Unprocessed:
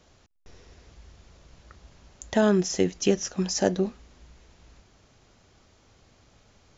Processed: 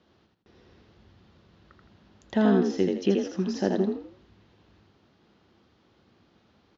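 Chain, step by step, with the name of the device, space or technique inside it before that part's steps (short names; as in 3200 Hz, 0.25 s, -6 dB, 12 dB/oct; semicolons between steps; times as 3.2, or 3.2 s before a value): frequency-shifting delay pedal into a guitar cabinet (frequency-shifting echo 82 ms, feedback 33%, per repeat +43 Hz, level -3.5 dB; speaker cabinet 90–4300 Hz, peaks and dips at 130 Hz -5 dB, 210 Hz +6 dB, 340 Hz +6 dB, 620 Hz -3 dB, 2300 Hz -4 dB); gain -4.5 dB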